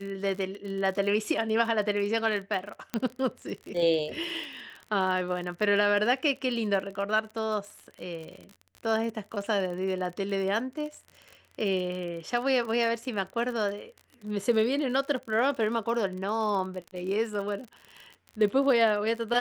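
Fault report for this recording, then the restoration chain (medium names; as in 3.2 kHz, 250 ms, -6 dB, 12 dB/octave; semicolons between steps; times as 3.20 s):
crackle 45 per s -35 dBFS
2.94 s: pop -14 dBFS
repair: de-click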